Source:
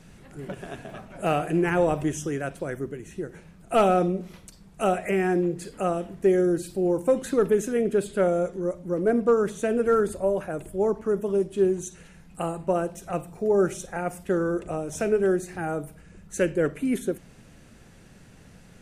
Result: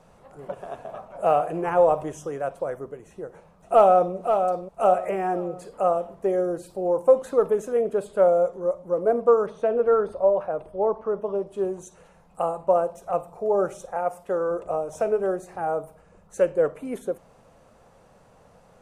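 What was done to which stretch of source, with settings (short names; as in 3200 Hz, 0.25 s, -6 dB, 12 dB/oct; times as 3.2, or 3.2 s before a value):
3.09–4.15 echo throw 0.53 s, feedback 35%, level -6.5 dB
9.46–11.47 polynomial smoothing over 15 samples
13.95–14.51 low shelf 200 Hz -6.5 dB
whole clip: band shelf 760 Hz +14.5 dB; gain -8.5 dB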